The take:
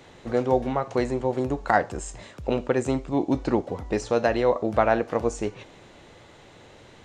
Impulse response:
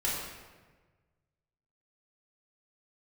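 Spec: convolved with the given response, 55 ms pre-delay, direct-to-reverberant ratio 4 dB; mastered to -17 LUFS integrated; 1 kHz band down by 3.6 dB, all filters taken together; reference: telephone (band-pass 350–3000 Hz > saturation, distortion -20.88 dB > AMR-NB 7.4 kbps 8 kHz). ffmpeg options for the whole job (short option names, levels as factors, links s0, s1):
-filter_complex "[0:a]equalizer=f=1000:t=o:g=-5,asplit=2[s0][s1];[1:a]atrim=start_sample=2205,adelay=55[s2];[s1][s2]afir=irnorm=-1:irlink=0,volume=0.266[s3];[s0][s3]amix=inputs=2:normalize=0,highpass=350,lowpass=3000,asoftclip=threshold=0.211,volume=3.98" -ar 8000 -c:a libopencore_amrnb -b:a 7400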